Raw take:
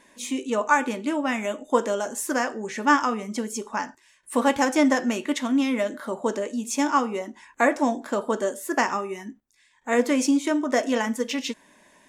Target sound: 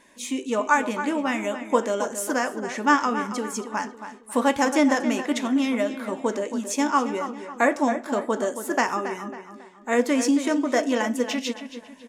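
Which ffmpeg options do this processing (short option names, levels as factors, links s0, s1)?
-filter_complex "[0:a]asplit=2[s0][s1];[s1]adelay=274,lowpass=f=3700:p=1,volume=0.316,asplit=2[s2][s3];[s3]adelay=274,lowpass=f=3700:p=1,volume=0.41,asplit=2[s4][s5];[s5]adelay=274,lowpass=f=3700:p=1,volume=0.41,asplit=2[s6][s7];[s7]adelay=274,lowpass=f=3700:p=1,volume=0.41[s8];[s0][s2][s4][s6][s8]amix=inputs=5:normalize=0"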